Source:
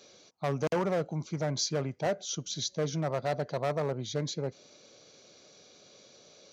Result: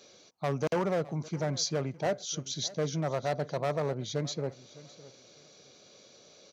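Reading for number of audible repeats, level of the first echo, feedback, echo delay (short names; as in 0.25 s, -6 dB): 2, -19.5 dB, 24%, 0.61 s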